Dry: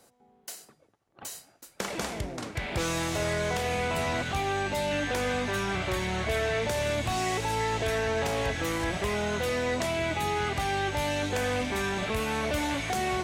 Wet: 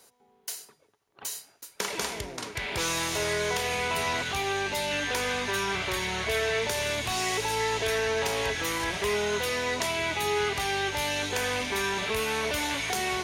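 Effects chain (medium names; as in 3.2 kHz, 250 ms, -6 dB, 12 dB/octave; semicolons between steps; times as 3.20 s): tilt shelf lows -6 dB, about 1.2 kHz; band-stop 7.8 kHz, Q 9.5; small resonant body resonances 420/960 Hz, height 10 dB, ringing for 65 ms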